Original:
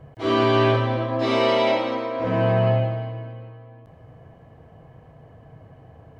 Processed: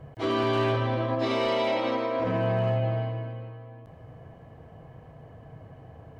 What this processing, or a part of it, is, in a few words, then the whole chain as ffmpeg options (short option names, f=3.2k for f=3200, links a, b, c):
clipper into limiter: -af "asoftclip=type=hard:threshold=-12dB,alimiter=limit=-18.5dB:level=0:latency=1:release=76"